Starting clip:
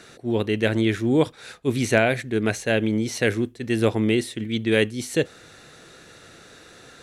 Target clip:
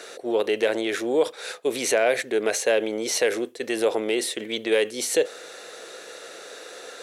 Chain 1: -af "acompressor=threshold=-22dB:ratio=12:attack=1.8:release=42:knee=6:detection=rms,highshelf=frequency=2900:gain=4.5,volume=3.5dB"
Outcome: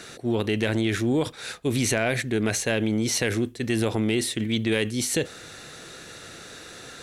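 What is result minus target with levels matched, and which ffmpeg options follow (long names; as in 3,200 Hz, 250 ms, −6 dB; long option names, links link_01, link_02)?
500 Hz band −4.5 dB
-af "acompressor=threshold=-22dB:ratio=12:attack=1.8:release=42:knee=6:detection=rms,highpass=frequency=490:width_type=q:width=2.5,highshelf=frequency=2900:gain=4.5,volume=3.5dB"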